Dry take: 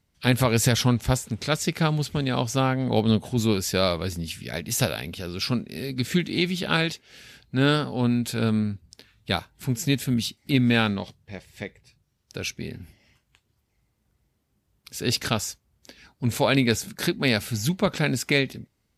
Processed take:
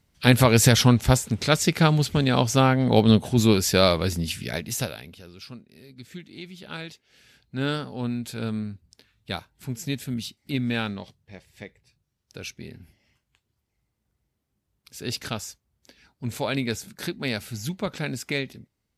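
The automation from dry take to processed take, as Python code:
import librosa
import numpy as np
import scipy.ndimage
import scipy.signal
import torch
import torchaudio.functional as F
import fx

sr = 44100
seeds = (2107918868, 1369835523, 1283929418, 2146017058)

y = fx.gain(x, sr, db=fx.line((4.45, 4.0), (4.91, -7.0), (5.58, -17.0), (6.33, -17.0), (7.62, -6.0)))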